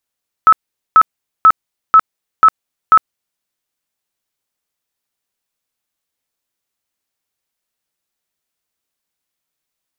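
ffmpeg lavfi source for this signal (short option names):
-f lavfi -i "aevalsrc='0.75*sin(2*PI*1300*mod(t,0.49))*lt(mod(t,0.49),72/1300)':d=2.94:s=44100"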